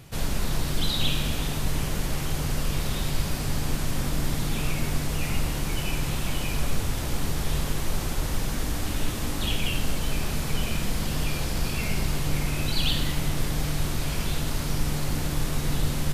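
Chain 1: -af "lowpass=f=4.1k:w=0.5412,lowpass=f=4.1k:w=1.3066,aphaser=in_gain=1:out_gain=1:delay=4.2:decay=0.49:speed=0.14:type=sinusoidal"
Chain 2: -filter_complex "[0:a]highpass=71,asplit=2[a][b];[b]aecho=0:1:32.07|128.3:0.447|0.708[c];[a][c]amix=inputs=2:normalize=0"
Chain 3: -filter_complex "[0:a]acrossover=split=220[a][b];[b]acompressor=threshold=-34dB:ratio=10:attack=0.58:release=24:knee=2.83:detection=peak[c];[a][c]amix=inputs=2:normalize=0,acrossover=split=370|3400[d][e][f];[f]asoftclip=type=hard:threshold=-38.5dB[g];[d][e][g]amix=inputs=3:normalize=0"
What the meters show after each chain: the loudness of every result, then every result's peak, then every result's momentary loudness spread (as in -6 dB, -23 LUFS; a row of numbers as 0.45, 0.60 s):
-27.5, -27.0, -31.0 LUFS; -7.5, -11.5, -12.0 dBFS; 5, 4, 2 LU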